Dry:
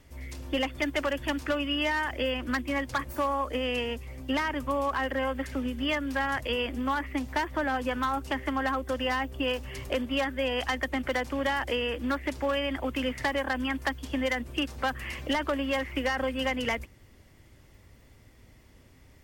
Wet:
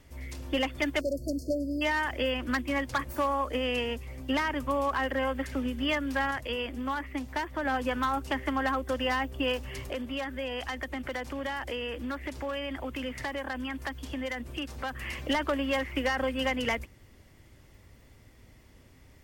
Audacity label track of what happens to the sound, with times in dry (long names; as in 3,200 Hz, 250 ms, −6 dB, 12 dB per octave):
1.010000	1.820000	time-frequency box erased 670–4,200 Hz
6.310000	7.650000	clip gain −3.5 dB
9.800000	15.010000	downward compressor 2 to 1, threshold −35 dBFS